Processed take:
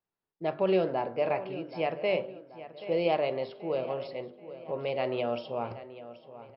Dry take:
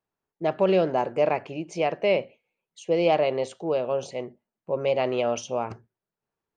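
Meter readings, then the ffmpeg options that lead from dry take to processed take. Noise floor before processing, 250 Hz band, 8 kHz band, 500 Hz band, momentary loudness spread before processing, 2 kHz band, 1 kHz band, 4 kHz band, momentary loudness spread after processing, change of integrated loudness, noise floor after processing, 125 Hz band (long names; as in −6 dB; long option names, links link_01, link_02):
below −85 dBFS, −5.0 dB, below −35 dB, −5.5 dB, 12 LU, −5.0 dB, −5.5 dB, −5.0 dB, 18 LU, −5.5 dB, below −85 dBFS, −5.0 dB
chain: -filter_complex "[0:a]bandreject=frequency=49.88:width_type=h:width=4,bandreject=frequency=99.76:width_type=h:width=4,bandreject=frequency=149.64:width_type=h:width=4,bandreject=frequency=199.52:width_type=h:width=4,bandreject=frequency=249.4:width_type=h:width=4,bandreject=frequency=299.28:width_type=h:width=4,bandreject=frequency=349.16:width_type=h:width=4,bandreject=frequency=399.04:width_type=h:width=4,bandreject=frequency=448.92:width_type=h:width=4,bandreject=frequency=498.8:width_type=h:width=4,bandreject=frequency=548.68:width_type=h:width=4,bandreject=frequency=598.56:width_type=h:width=4,bandreject=frequency=648.44:width_type=h:width=4,bandreject=frequency=698.32:width_type=h:width=4,bandreject=frequency=748.2:width_type=h:width=4,bandreject=frequency=798.08:width_type=h:width=4,bandreject=frequency=847.96:width_type=h:width=4,bandreject=frequency=897.84:width_type=h:width=4,bandreject=frequency=947.72:width_type=h:width=4,bandreject=frequency=997.6:width_type=h:width=4,bandreject=frequency=1047.48:width_type=h:width=4,bandreject=frequency=1097.36:width_type=h:width=4,bandreject=frequency=1147.24:width_type=h:width=4,bandreject=frequency=1197.12:width_type=h:width=4,bandreject=frequency=1247:width_type=h:width=4,bandreject=frequency=1296.88:width_type=h:width=4,bandreject=frequency=1346.76:width_type=h:width=4,bandreject=frequency=1396.64:width_type=h:width=4,bandreject=frequency=1446.52:width_type=h:width=4,bandreject=frequency=1496.4:width_type=h:width=4,bandreject=frequency=1546.28:width_type=h:width=4,bandreject=frequency=1596.16:width_type=h:width=4,flanger=delay=5.7:depth=2.9:regen=87:speed=0.45:shape=sinusoidal,asplit=2[link_01][link_02];[link_02]adelay=780,lowpass=frequency=4100:poles=1,volume=-14.5dB,asplit=2[link_03][link_04];[link_04]adelay=780,lowpass=frequency=4100:poles=1,volume=0.46,asplit=2[link_05][link_06];[link_06]adelay=780,lowpass=frequency=4100:poles=1,volume=0.46,asplit=2[link_07][link_08];[link_08]adelay=780,lowpass=frequency=4100:poles=1,volume=0.46[link_09];[link_03][link_05][link_07][link_09]amix=inputs=4:normalize=0[link_10];[link_01][link_10]amix=inputs=2:normalize=0" -ar 12000 -c:a libmp3lame -b:a 64k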